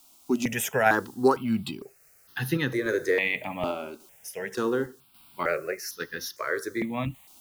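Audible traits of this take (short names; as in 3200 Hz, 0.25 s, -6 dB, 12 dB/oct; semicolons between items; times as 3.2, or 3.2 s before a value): a quantiser's noise floor 10-bit, dither triangular; random-step tremolo; notches that jump at a steady rate 2.2 Hz 480–2300 Hz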